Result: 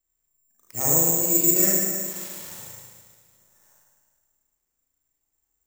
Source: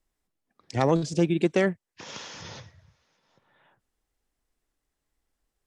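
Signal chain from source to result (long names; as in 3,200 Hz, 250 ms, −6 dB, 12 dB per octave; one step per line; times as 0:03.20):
spring reverb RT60 1.8 s, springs 36/50 ms, chirp 80 ms, DRR −7.5 dB
bad sample-rate conversion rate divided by 6×, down none, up zero stuff
level −12.5 dB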